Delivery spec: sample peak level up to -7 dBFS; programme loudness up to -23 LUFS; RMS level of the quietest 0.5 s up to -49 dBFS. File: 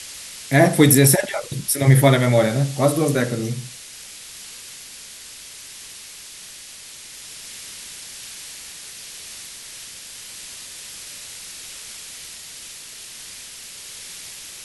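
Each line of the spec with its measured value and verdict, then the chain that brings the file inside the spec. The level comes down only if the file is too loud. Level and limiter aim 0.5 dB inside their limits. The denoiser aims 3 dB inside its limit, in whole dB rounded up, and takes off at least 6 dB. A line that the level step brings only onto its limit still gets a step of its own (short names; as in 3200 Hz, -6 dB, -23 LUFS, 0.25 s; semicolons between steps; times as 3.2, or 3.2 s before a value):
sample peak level -2.0 dBFS: fail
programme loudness -17.0 LUFS: fail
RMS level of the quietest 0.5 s -40 dBFS: fail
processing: denoiser 6 dB, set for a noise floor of -40 dBFS; gain -6.5 dB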